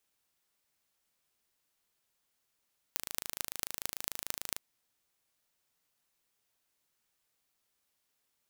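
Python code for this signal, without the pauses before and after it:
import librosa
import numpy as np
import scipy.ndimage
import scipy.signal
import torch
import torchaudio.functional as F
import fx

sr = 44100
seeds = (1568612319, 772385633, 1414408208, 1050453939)

y = fx.impulse_train(sr, length_s=1.64, per_s=26.8, accent_every=6, level_db=-4.5)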